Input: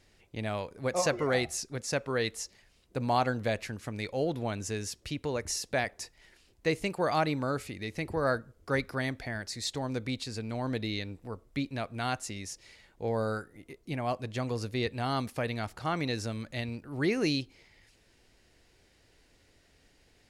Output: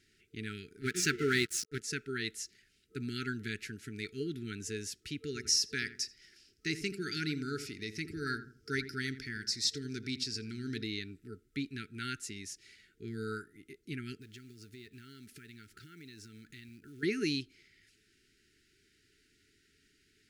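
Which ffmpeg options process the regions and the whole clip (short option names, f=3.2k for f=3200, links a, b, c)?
-filter_complex "[0:a]asettb=1/sr,asplit=3[a][b][c];[a]atrim=end=0.814[d];[b]atrim=start=0.81:end=1.81,asetpts=PTS-STARTPTS,afade=t=in:d=0.004:c=qsin,afade=t=out:st=0.996:d=0.004:c=qsin,acontrast=63,aeval=exprs='sgn(val(0))*max(abs(val(0))-0.0158,0)':c=same[e];[c]atrim=start=1.806[f];[d][e]acrossfade=d=0.004:c1=hsin:c2=qsin[g];[g][f]acrossfade=d=0.004:c1=qsin:c2=hsin,asettb=1/sr,asplit=3[h][i][j];[h]atrim=end=5.264[k];[i]atrim=start=5.26:end=10.84,asetpts=PTS-STARTPTS,afade=t=in:d=0.004:c=qsin,afade=t=out:st=5.576:d=0.004:c=qsin,equalizer=f=5.3k:w=3:g=13,asplit=2[l][m];[m]adelay=83,lowpass=f=1.2k:p=1,volume=-10.5dB,asplit=2[n][o];[o]adelay=83,lowpass=f=1.2k:p=1,volume=0.34,asplit=2[p][q];[q]adelay=83,lowpass=f=1.2k:p=1,volume=0.34,asplit=2[r][s];[s]adelay=83,lowpass=f=1.2k:p=1,volume=0.34[t];[l][n][p][r][t]amix=inputs=5:normalize=0,atrim=end_sample=246078[u];[j]atrim=start=10.836[v];[k][u]acrossfade=d=0.004:c1=hsin:c2=qsin[w];[w][v]acrossfade=d=0.004:c1=qsin:c2=hsin,asettb=1/sr,asplit=3[x][y][z];[x]atrim=end=14.214[aa];[y]atrim=start=14.21:end=17.03,asetpts=PTS-STARTPTS,afade=t=in:d=0.004:c=qsin,afade=t=out:st=2.816:d=0.004:c=qsin,acompressor=threshold=-43dB:ratio=6:attack=3.2:release=140:knee=1:detection=peak,acrusher=bits=5:mode=log:mix=0:aa=0.000001[ab];[z]atrim=start=17.026[ac];[aa][ab]acrossfade=d=0.004:c1=hsin:c2=qsin[ad];[ad][ac]acrossfade=d=0.004:c1=qsin:c2=hsin,afftfilt=real='re*(1-between(b*sr/4096,450,1300))':imag='im*(1-between(b*sr/4096,450,1300))':win_size=4096:overlap=0.75,lowshelf=f=87:g=-12,volume=-3dB"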